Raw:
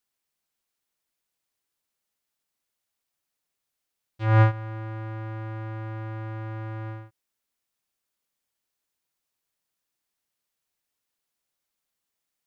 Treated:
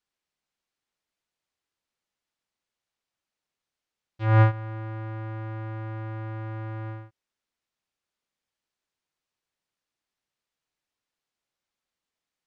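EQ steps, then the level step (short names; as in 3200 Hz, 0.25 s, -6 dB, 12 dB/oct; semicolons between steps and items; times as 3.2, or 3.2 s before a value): air absorption 74 m; 0.0 dB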